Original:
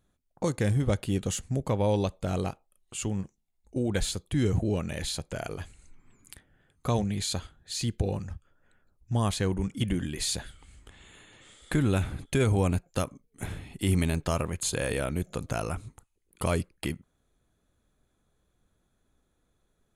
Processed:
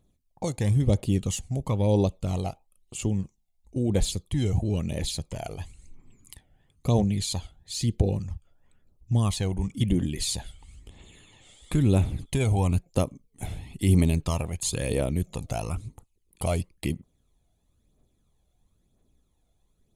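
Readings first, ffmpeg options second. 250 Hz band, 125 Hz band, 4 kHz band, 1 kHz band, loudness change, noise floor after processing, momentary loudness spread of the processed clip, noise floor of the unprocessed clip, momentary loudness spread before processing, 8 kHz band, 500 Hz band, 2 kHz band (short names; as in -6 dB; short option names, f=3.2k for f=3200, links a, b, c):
+2.5 dB, +4.0 dB, +0.5 dB, -1.0 dB, +2.5 dB, -70 dBFS, 13 LU, -74 dBFS, 12 LU, +1.0 dB, +0.5 dB, -4.0 dB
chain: -af "aphaser=in_gain=1:out_gain=1:delay=1.5:decay=0.49:speed=1:type=triangular,equalizer=f=1.5k:w=2.5:g=-13"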